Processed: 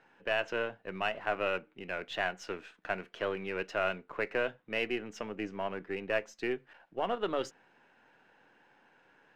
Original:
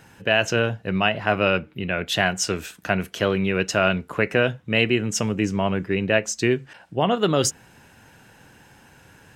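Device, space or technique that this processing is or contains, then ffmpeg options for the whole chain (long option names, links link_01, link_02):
crystal radio: -af "highpass=330,lowpass=2600,aeval=exprs='if(lt(val(0),0),0.708*val(0),val(0))':channel_layout=same,volume=-9dB"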